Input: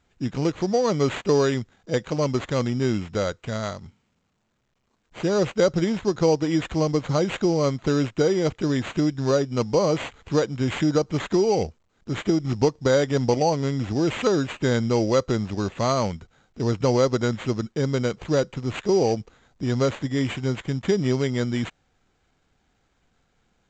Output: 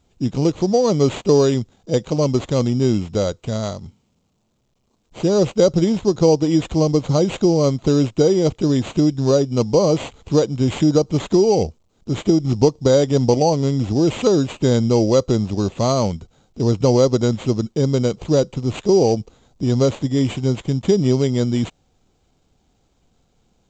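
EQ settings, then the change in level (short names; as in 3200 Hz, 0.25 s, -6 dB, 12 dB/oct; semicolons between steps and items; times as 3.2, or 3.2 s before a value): bell 1700 Hz -13 dB 1.2 oct; +6.5 dB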